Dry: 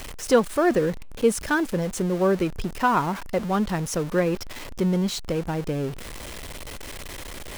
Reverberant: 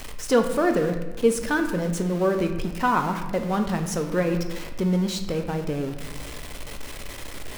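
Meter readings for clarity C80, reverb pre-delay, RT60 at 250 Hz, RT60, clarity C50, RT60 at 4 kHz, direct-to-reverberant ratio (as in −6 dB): 10.0 dB, 4 ms, 1.7 s, 1.1 s, 8.0 dB, 0.75 s, 5.0 dB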